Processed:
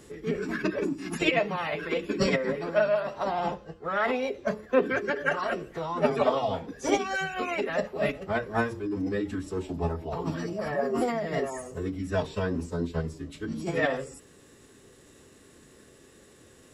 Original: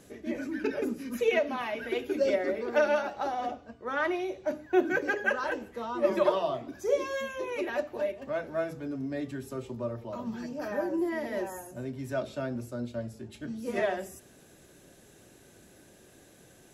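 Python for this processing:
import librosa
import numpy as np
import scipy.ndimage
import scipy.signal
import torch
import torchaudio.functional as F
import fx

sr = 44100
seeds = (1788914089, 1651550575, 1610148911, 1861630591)

p1 = fx.rider(x, sr, range_db=4, speed_s=0.5)
p2 = x + (p1 * 10.0 ** (-0.5 / 20.0))
p3 = fx.pitch_keep_formants(p2, sr, semitones=-6.0)
y = p3 * 10.0 ** (-2.5 / 20.0)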